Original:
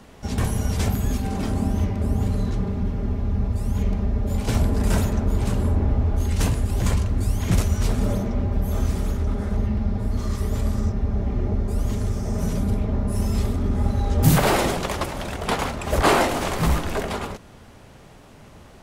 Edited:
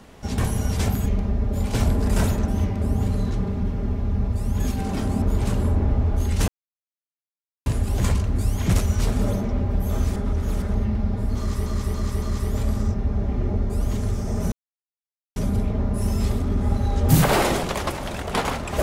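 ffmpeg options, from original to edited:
-filter_complex "[0:a]asplit=12[a][b][c][d][e][f][g][h][i][j][k][l];[a]atrim=end=1.062[m];[b]atrim=start=3.798:end=5.222[n];[c]atrim=start=1.678:end=3.802[o];[d]atrim=start=1.058:end=1.682[p];[e]atrim=start=5.218:end=6.48,asetpts=PTS-STARTPTS,afade=t=out:st=1.258:d=0.004:c=hsin,apad=pad_dur=1.18[q];[f]atrim=start=6.48:end=8.982,asetpts=PTS-STARTPTS,afade=t=in:d=0.004:c=hsin[r];[g]atrim=start=8.978:end=9.442,asetpts=PTS-STARTPTS,areverse[s];[h]atrim=start=9.438:end=10.482[t];[i]atrim=start=10.198:end=10.482[u];[j]atrim=start=10.198:end=10.482[v];[k]atrim=start=10.198:end=12.5,asetpts=PTS-STARTPTS,afade=t=out:st=2.298:d=0.004:c=hsin,apad=pad_dur=0.84[w];[l]atrim=start=12.5,asetpts=PTS-STARTPTS,afade=t=in:d=0.004:c=hsin[x];[m][n]acrossfade=d=0.004:c1=hsin:c2=hsin[y];[y][o]acrossfade=d=0.004:c1=hsin:c2=hsin[z];[z][p]acrossfade=d=0.004:c1=hsin:c2=hsin[aa];[q][r]concat=n=2:v=0:a=1[ab];[aa][ab]acrossfade=d=0.004:c1=hsin:c2=hsin[ac];[ac][s]acrossfade=d=0.004:c1=hsin:c2=hsin[ad];[ad][t]acrossfade=d=0.004:c1=hsin:c2=hsin[ae];[ae][u]acrossfade=d=0.004:c1=hsin:c2=hsin[af];[af][v]acrossfade=d=0.004:c1=hsin:c2=hsin[ag];[w][x]concat=n=2:v=0:a=1[ah];[ag][ah]acrossfade=d=0.004:c1=hsin:c2=hsin"

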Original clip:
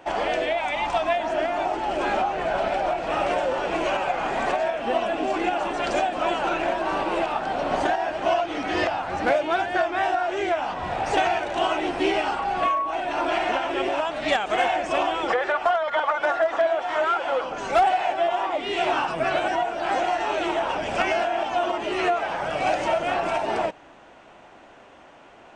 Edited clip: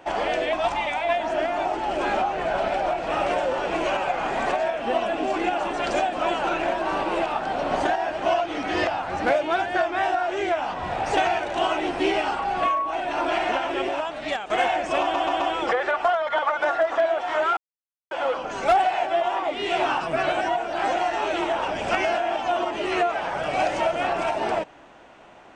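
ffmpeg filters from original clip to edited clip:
-filter_complex "[0:a]asplit=8[a][b][c][d][e][f][g][h];[a]atrim=end=0.532[i];[b]atrim=start=0.528:end=1.092,asetpts=PTS-STARTPTS,areverse[j];[c]atrim=start=1.088:end=14.5,asetpts=PTS-STARTPTS,afade=t=out:st=12.592:d=0.82:silence=0.421697[k];[d]atrim=start=14.5:end=15.142,asetpts=PTS-STARTPTS,afade=t=in:d=0.004:c=hsin:silence=0.421697[l];[e]atrim=start=15.008:end=15.142[m];[f]atrim=start=15.008:end=15.142[n];[g]atrim=start=15.008:end=17.18,asetpts=PTS-STARTPTS,afade=t=out:st=2.168:d=0.004:c=hsin,apad=pad_dur=0.54[o];[h]atrim=start=17.18,asetpts=PTS-STARTPTS,afade=t=in:d=0.004:c=hsin[p];[i][j]acrossfade=d=0.004:c1=hsin:c2=hsin[q];[k][l]concat=n=2:v=0:a=1[r];[q][r]acrossfade=d=0.004:c1=hsin:c2=hsin[s];[s][m]acrossfade=d=0.004:c1=hsin:c2=hsin[t];[t][n]acrossfade=d=0.004:c1=hsin:c2=hsin[u];[o][p]concat=n=2:v=0:a=1[v];[u][v]acrossfade=d=0.004:c1=hsin:c2=hsin"

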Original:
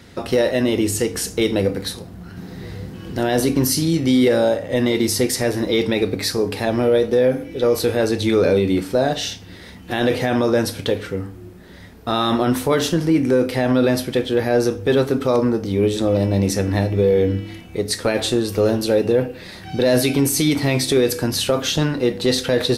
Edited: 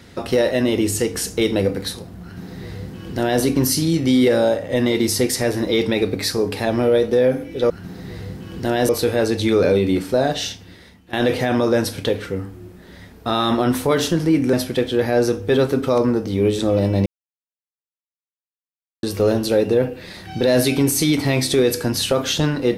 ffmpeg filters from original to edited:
-filter_complex "[0:a]asplit=7[a][b][c][d][e][f][g];[a]atrim=end=7.702[h];[b]atrim=start=2.228:end=3.422[i];[c]atrim=start=7.698:end=9.94,asetpts=PTS-STARTPTS,afade=t=out:st=1.562:d=0.68:silence=0.125893[j];[d]atrim=start=9.94:end=13.342,asetpts=PTS-STARTPTS,afade=t=in:d=0.004:c=hsin:silence=0.125893[k];[e]atrim=start=13.908:end=16.44,asetpts=PTS-STARTPTS,afade=t=out:st=2.528:d=0.004:c=hsin[l];[f]atrim=start=16.44:end=18.41,asetpts=PTS-STARTPTS,volume=0[m];[g]atrim=start=18.41,asetpts=PTS-STARTPTS,afade=t=in:d=0.004:c=hsin[n];[h][i]acrossfade=d=0.004:c1=hsin:c2=hsin[o];[j][k]concat=n=2:v=0:a=1[p];[o][p]acrossfade=d=0.004:c1=hsin:c2=hsin[q];[l][m][n]concat=n=3:v=0:a=1[r];[q][r]acrossfade=d=0.004:c1=hsin:c2=hsin"

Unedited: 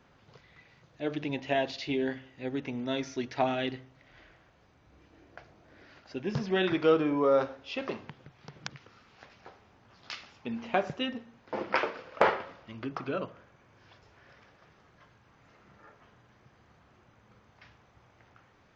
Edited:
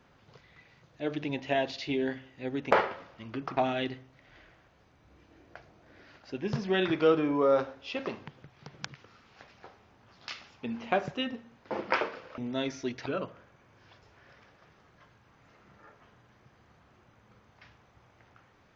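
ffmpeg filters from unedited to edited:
-filter_complex "[0:a]asplit=5[a][b][c][d][e];[a]atrim=end=2.712[f];[b]atrim=start=12.198:end=13.062[g];[c]atrim=start=3.388:end=12.202[h];[d]atrim=start=2.708:end=3.392[i];[e]atrim=start=13.058[j];[f][g]acrossfade=d=0.004:c1=hsin:c2=hsin[k];[k][h]acrossfade=d=0.004:c1=hsin:c2=hsin[l];[l][i]acrossfade=d=0.004:c1=hsin:c2=hsin[m];[m][j]acrossfade=d=0.004:c1=hsin:c2=hsin"

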